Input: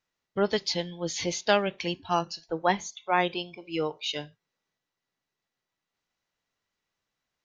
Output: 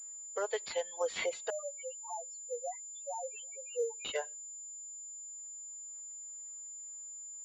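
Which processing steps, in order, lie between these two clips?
compressor 4:1, threshold -34 dBFS, peak gain reduction 14.5 dB; limiter -28.5 dBFS, peak gain reduction 9.5 dB; elliptic high-pass 450 Hz, stop band 40 dB; high shelf 2300 Hz -8.5 dB; notch 780 Hz, Q 21; reverb removal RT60 1.4 s; tremolo triangle 1.9 Hz, depth 35%; 1.5–4.05 loudest bins only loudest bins 1; pulse-width modulation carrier 7100 Hz; gain +13 dB

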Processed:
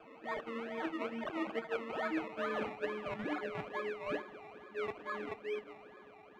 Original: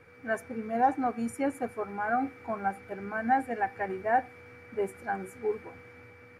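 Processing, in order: frequency quantiser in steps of 6 st; Doppler pass-by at 2.41, 15 m/s, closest 5.2 m; in parallel at +2 dB: level quantiser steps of 19 dB; on the sum: fixed phaser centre 350 Hz, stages 4; decimation with a swept rate 22×, swing 60% 2.3 Hz; resonant high shelf 3400 Hz -11.5 dB, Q 1.5; reverse; compressor 5:1, threshold -47 dBFS, peak gain reduction 17 dB; reverse; three-band isolator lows -20 dB, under 190 Hz, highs -19 dB, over 6300 Hz; gain +12 dB

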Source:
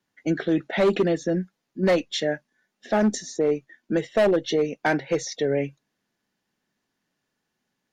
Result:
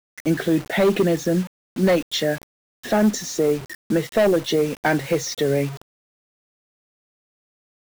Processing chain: zero-crossing step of -39.5 dBFS; expander -43 dBFS; bell 110 Hz +6 dB 1.4 oct; in parallel at -2 dB: compressor 10:1, threshold -29 dBFS, peak gain reduction 14.5 dB; on the sum: requantised 6-bit, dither none

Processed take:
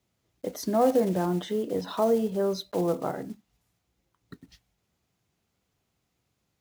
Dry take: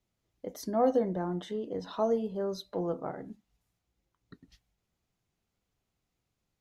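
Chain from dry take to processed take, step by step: block floating point 5-bit; in parallel at +1 dB: limiter -24.5 dBFS, peak gain reduction 9 dB; on the sum: HPF 63 Hz

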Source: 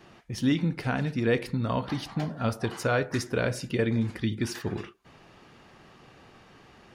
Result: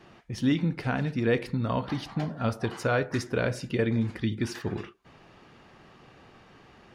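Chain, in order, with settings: high shelf 6700 Hz -7.5 dB

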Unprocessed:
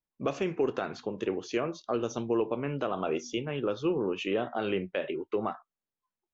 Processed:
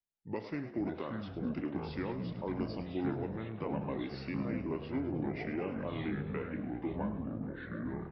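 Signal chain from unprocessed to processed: frequency-shifting echo 82 ms, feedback 58%, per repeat +100 Hz, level -13 dB; echoes that change speed 0.321 s, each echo -5 st, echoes 3; varispeed -22%; gain -8.5 dB

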